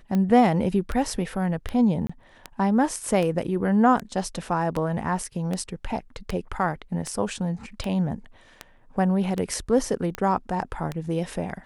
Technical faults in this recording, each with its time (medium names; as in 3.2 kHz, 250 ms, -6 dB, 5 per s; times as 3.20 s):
tick 78 rpm -15 dBFS
2.07–2.10 s: dropout 25 ms